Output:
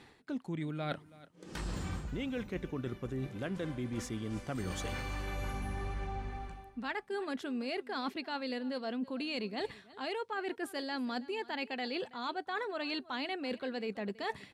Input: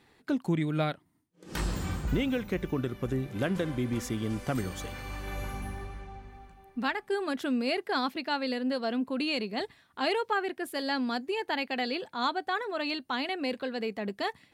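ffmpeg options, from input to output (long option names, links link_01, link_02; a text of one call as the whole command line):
ffmpeg -i in.wav -af "lowpass=10000,areverse,acompressor=threshold=-41dB:ratio=16,areverse,aecho=1:1:326:0.1,volume=7dB" out.wav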